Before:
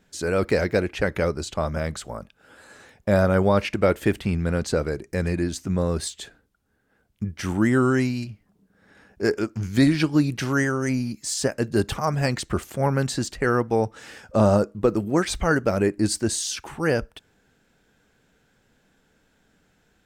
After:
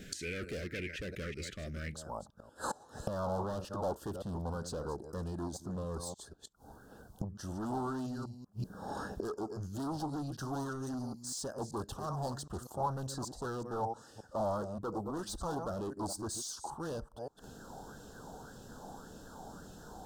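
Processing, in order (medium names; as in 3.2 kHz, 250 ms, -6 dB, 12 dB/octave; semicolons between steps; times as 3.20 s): chunks repeated in reverse 192 ms, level -12.5 dB; overload inside the chain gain 24.5 dB; inverted gate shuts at -38 dBFS, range -25 dB; Butterworth band-stop 910 Hz, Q 0.65, from 1.93 s 2.2 kHz; sweeping bell 1.8 Hz 780–2400 Hz +15 dB; trim +13.5 dB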